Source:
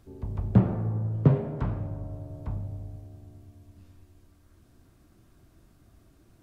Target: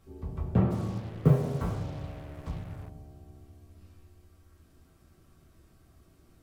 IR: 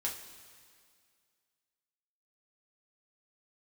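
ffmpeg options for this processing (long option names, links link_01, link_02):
-filter_complex "[1:a]atrim=start_sample=2205,asetrate=61740,aresample=44100[link_01];[0:a][link_01]afir=irnorm=-1:irlink=0,asplit=3[link_02][link_03][link_04];[link_02]afade=type=out:start_time=0.7:duration=0.02[link_05];[link_03]acrusher=bits=7:mix=0:aa=0.5,afade=type=in:start_time=0.7:duration=0.02,afade=type=out:start_time=2.88:duration=0.02[link_06];[link_04]afade=type=in:start_time=2.88:duration=0.02[link_07];[link_05][link_06][link_07]amix=inputs=3:normalize=0,volume=1dB"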